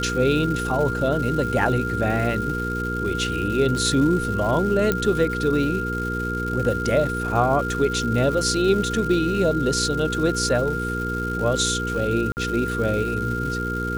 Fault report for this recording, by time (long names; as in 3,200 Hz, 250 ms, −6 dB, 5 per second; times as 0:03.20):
surface crackle 400 per second −30 dBFS
mains hum 60 Hz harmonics 8 −28 dBFS
whistle 1,400 Hz −27 dBFS
0:04.92: click −7 dBFS
0:12.32–0:12.37: drop-out 49 ms